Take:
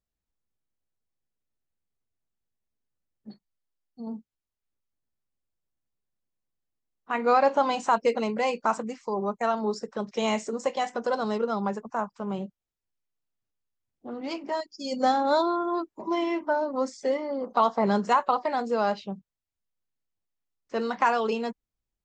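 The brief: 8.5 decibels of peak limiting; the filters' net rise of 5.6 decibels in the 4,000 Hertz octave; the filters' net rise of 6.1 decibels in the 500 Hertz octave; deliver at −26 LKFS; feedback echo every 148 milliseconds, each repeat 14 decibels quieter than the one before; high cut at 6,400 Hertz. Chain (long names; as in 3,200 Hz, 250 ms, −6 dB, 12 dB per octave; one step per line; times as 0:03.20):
low-pass filter 6,400 Hz
parametric band 500 Hz +7 dB
parametric band 4,000 Hz +7.5 dB
brickwall limiter −15 dBFS
repeating echo 148 ms, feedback 20%, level −14 dB
level −0.5 dB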